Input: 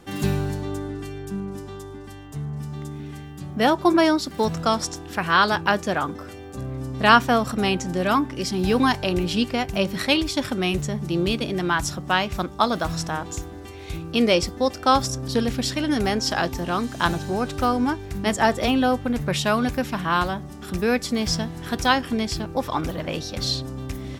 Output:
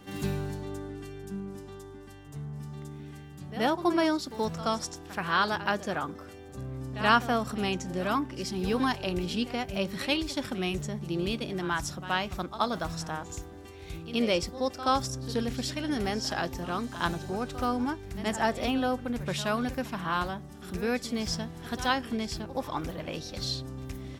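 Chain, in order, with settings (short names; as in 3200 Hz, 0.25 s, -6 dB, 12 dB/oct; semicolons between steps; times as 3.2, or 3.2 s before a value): reverse echo 77 ms -14 dB; gain -8 dB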